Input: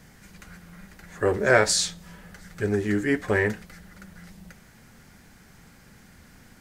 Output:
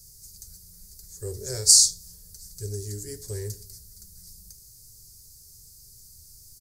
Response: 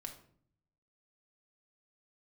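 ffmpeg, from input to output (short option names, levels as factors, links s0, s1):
-filter_complex "[0:a]firequalizer=gain_entry='entry(100,0);entry(240,-28);entry(390,-10);entry(660,-27);entry(1500,-29);entry(2900,-24);entry(4600,8);entry(11000,14)':delay=0.05:min_phase=1,asplit=2[s0][s1];[1:a]atrim=start_sample=2205[s2];[s1][s2]afir=irnorm=-1:irlink=0,volume=0.668[s3];[s0][s3]amix=inputs=2:normalize=0,volume=0.708"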